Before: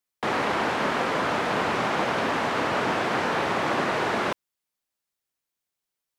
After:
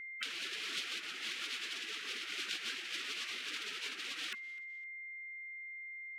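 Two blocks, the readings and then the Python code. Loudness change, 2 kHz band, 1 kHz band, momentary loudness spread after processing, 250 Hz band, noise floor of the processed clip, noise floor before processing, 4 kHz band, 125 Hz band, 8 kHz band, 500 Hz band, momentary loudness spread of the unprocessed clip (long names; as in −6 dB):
−15.0 dB, −12.0 dB, −28.5 dB, 7 LU, −28.5 dB, −47 dBFS, below −85 dBFS, −4.0 dB, below −35 dB, −4.5 dB, −31.0 dB, 2 LU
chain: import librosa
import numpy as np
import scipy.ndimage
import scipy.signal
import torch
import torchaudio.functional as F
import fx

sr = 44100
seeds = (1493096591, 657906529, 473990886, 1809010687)

p1 = fx.spec_gate(x, sr, threshold_db=-15, keep='weak')
p2 = scipy.signal.sosfilt(scipy.signal.butter(4, 280.0, 'highpass', fs=sr, output='sos'), p1)
p3 = p2 + 10.0 ** (-59.0 / 20.0) * np.sin(2.0 * np.pi * 2100.0 * np.arange(len(p2)) / sr)
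p4 = fx.high_shelf(p3, sr, hz=2000.0, db=-8.5)
p5 = fx.over_compress(p4, sr, threshold_db=-50.0, ratio=-0.5)
p6 = fx.band_shelf(p5, sr, hz=730.0, db=-13.0, octaves=1.2)
p7 = p6 + fx.echo_feedback(p6, sr, ms=255, feedback_pct=32, wet_db=-23.0, dry=0)
y = F.gain(torch.from_numpy(p7), 11.5).numpy()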